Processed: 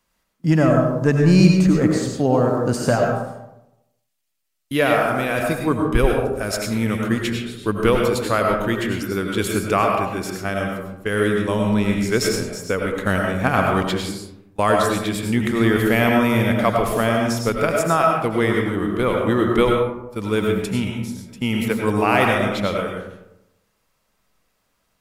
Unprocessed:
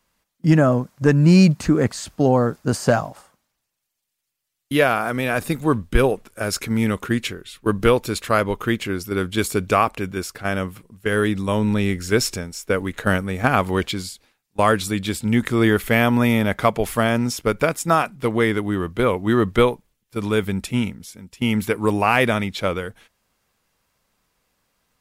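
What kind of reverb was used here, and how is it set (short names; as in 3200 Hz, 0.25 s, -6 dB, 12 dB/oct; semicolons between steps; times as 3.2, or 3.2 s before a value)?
digital reverb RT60 0.91 s, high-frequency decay 0.4×, pre-delay 60 ms, DRR 0.5 dB; gain -2 dB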